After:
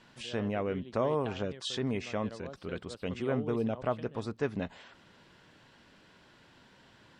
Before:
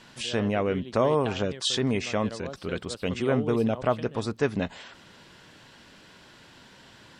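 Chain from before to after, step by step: high shelf 4100 Hz -7.5 dB; gain -6.5 dB

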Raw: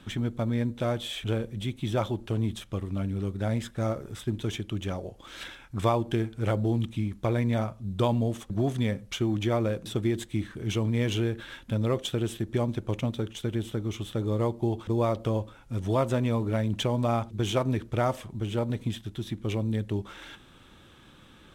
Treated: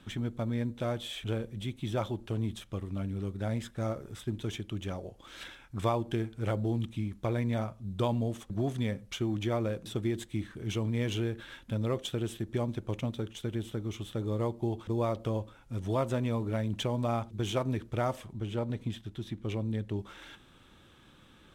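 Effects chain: 18.33–19.99 high shelf 6600 Hz -7 dB; gain -4.5 dB

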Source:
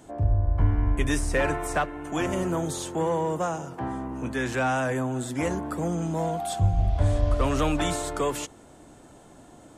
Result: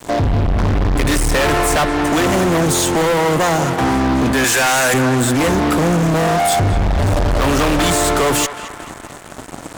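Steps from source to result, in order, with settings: 4.44–4.94 tilt +4.5 dB/oct; in parallel at -0.5 dB: compressor, threshold -36 dBFS, peak gain reduction 19 dB; on the sum: fuzz box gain 34 dB, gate -42 dBFS; narrowing echo 0.219 s, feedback 62%, band-pass 1500 Hz, level -9.5 dB

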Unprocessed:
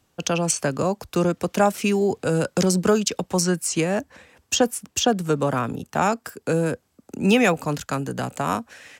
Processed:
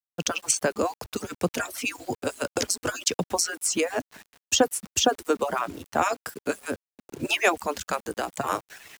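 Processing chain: median-filter separation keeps percussive; bit-crush 8-bit

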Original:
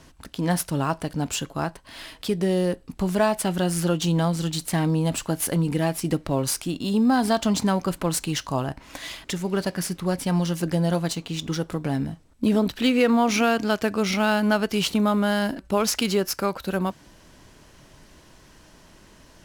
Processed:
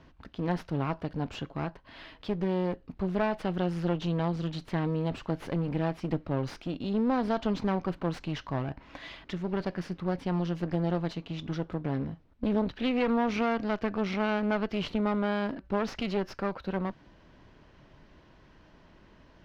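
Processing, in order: one-sided clip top -30.5 dBFS; air absorption 260 m; gain -4 dB

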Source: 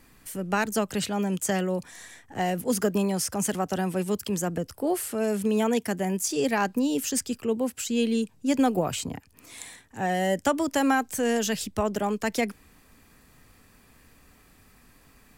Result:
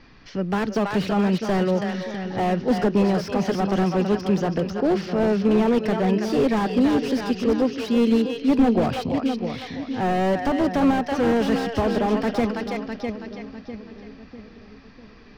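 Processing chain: steep low-pass 5600 Hz 72 dB/oct; split-band echo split 440 Hz, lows 0.65 s, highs 0.327 s, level -8.5 dB; slew limiter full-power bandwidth 33 Hz; gain +6.5 dB

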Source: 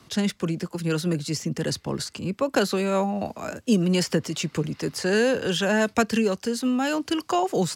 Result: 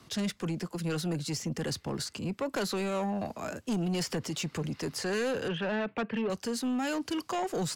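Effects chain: 5.48–6.3 elliptic band-pass 130–2600 Hz, stop band 40 dB; in parallel at -1 dB: limiter -20 dBFS, peak gain reduction 10.5 dB; on the sum: soft clip -17.5 dBFS, distortion -13 dB; gain -8.5 dB

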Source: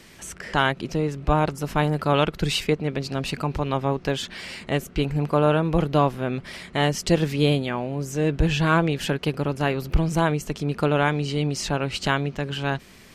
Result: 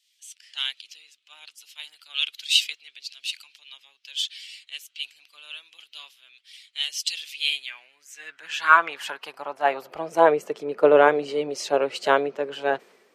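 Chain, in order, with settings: bin magnitudes rounded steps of 15 dB; high-pass sweep 3100 Hz -> 480 Hz, 7.18–10.39; three-band expander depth 70%; gain -3 dB

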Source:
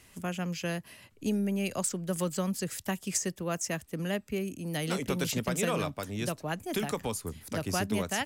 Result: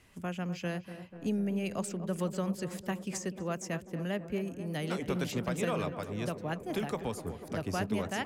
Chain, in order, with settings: high shelf 4400 Hz -10.5 dB; tape echo 0.247 s, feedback 85%, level -10 dB, low-pass 1300 Hz; gain -2 dB

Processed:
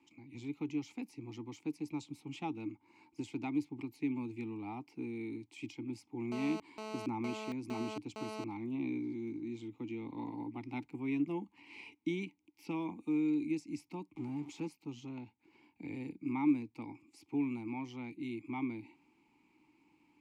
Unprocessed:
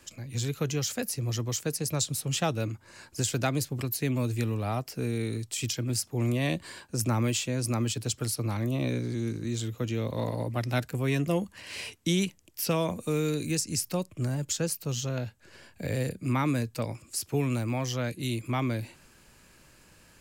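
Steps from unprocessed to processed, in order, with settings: 14.15–14.68 zero-crossing step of -34 dBFS; vowel filter u; 6.32–8.44 GSM buzz -46 dBFS; gain +2.5 dB

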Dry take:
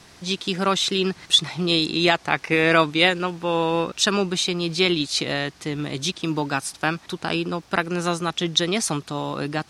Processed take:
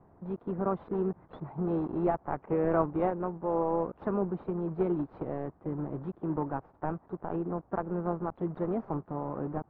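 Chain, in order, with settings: block floating point 3-bit; LPF 1000 Hz 24 dB/oct; harmoniser +3 st -16 dB; gain -7 dB

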